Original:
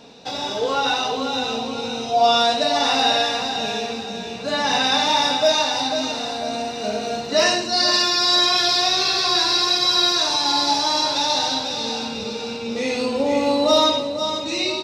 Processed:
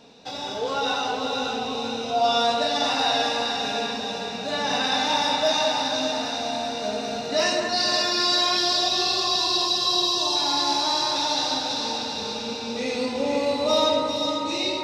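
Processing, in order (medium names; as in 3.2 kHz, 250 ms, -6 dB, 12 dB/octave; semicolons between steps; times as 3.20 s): 8.58–10.36 s: brick-wall FIR band-stop 1.2–2.6 kHz; echo whose repeats swap between lows and highs 198 ms, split 2.3 kHz, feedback 80%, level -4 dB; trim -5.5 dB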